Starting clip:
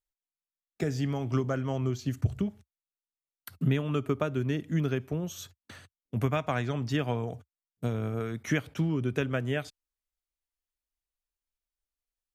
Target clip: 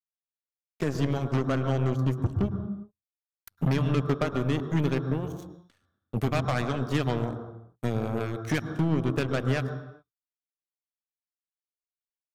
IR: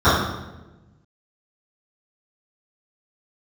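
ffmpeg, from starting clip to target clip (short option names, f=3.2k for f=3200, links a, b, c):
-filter_complex "[0:a]asoftclip=type=tanh:threshold=-18.5dB,aeval=exprs='0.112*(cos(1*acos(clip(val(0)/0.112,-1,1)))-cos(1*PI/2))+0.00891*(cos(4*acos(clip(val(0)/0.112,-1,1)))-cos(4*PI/2))+0.00316*(cos(5*acos(clip(val(0)/0.112,-1,1)))-cos(5*PI/2))+0.0178*(cos(7*acos(clip(val(0)/0.112,-1,1)))-cos(7*PI/2))':c=same,asplit=2[a][b];[1:a]atrim=start_sample=2205,afade=t=out:st=0.37:d=0.01,atrim=end_sample=16758,adelay=100[c];[b][c]afir=irnorm=-1:irlink=0,volume=-34.5dB[d];[a][d]amix=inputs=2:normalize=0,volume=2dB"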